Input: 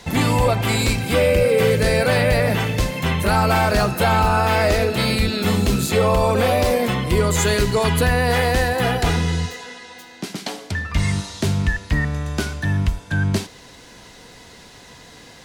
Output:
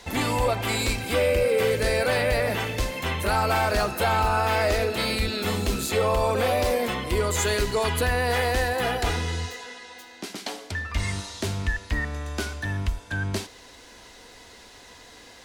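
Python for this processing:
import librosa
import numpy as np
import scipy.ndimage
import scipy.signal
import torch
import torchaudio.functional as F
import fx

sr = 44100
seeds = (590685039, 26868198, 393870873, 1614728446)

p1 = fx.peak_eq(x, sr, hz=150.0, db=-14.0, octaves=0.77)
p2 = 10.0 ** (-22.5 / 20.0) * np.tanh(p1 / 10.0 ** (-22.5 / 20.0))
p3 = p1 + (p2 * librosa.db_to_amplitude(-11.5))
y = p3 * librosa.db_to_amplitude(-5.5)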